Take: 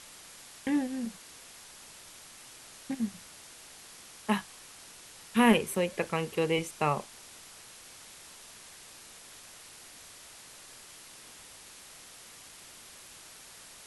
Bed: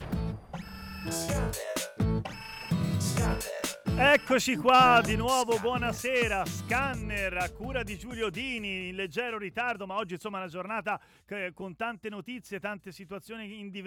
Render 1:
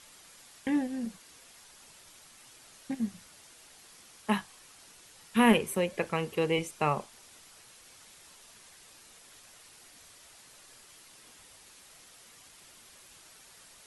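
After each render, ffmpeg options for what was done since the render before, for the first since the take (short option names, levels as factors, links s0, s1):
-af "afftdn=nr=6:nf=-51"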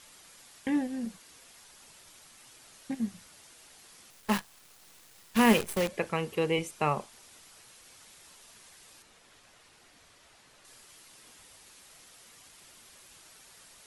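-filter_complex "[0:a]asettb=1/sr,asplit=3[s0][s1][s2];[s0]atrim=end=4.104[s3];[s1]atrim=start=4.1:end=5.88,asetpts=PTS-STARTPTS,afade=t=in:d=0.004:c=qsin,afade=t=out:st=1.776:d=0.004:c=qsin,acrusher=bits=6:dc=4:mix=0:aa=0.000001[s4];[s2]atrim=start=5.876[s5];[s3][s4]acrossfade=d=0.004:c1=hsin:c2=qsin[s6];[s6][s5]acrossfade=d=0.004:c1=qsin:c2=hsin,asettb=1/sr,asplit=3[s7][s8][s9];[s7]atrim=end=9.024[s10];[s8]atrim=start=9.02:end=10.65,asetpts=PTS-STARTPTS,afade=t=in:d=0.004:c=qsin,afade=t=out:st=1.626:d=0.004:c=qsin,lowpass=f=3200:p=1[s11];[s9]atrim=start=10.646[s12];[s10][s11]acrossfade=d=0.004:c1=hsin:c2=qsin[s13];[s13][s12]acrossfade=d=0.004:c1=qsin:c2=hsin"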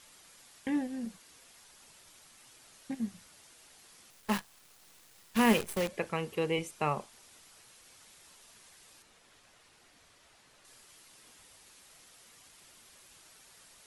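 -af "volume=0.708"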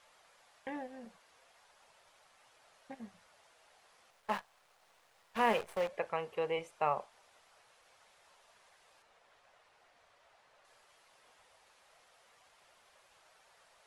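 -af "lowpass=f=1400:p=1,lowshelf=f=420:t=q:w=1.5:g=-11.5"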